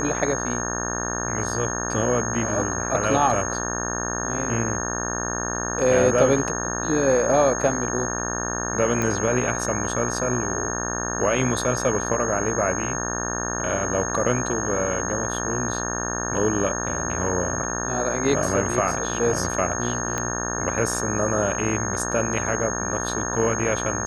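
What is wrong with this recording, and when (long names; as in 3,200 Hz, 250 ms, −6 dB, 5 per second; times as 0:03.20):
mains buzz 60 Hz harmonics 30 −29 dBFS
whistle 6,500 Hz −29 dBFS
0:09.02: click −12 dBFS
0:20.18: click −12 dBFS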